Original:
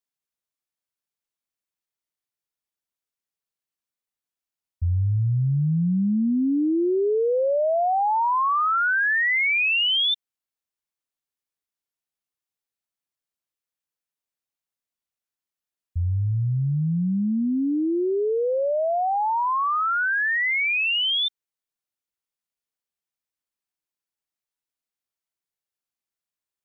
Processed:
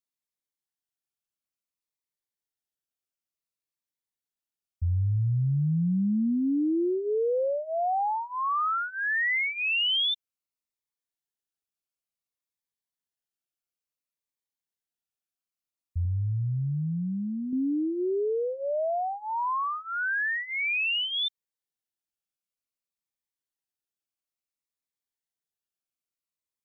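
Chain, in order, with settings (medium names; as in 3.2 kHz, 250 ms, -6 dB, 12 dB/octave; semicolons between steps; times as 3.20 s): 16.05–17.53 s: peaking EQ 370 Hz -9.5 dB 1.5 oct; Shepard-style phaser falling 0.57 Hz; trim -3.5 dB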